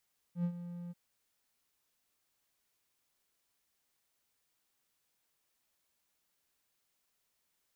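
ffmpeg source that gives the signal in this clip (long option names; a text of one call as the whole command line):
ffmpeg -f lavfi -i "aevalsrc='0.0473*(1-4*abs(mod(174*t+0.25,1)-0.5))':duration=0.587:sample_rate=44100,afade=type=in:duration=0.091,afade=type=out:start_time=0.091:duration=0.075:silence=0.237,afade=type=out:start_time=0.56:duration=0.027" out.wav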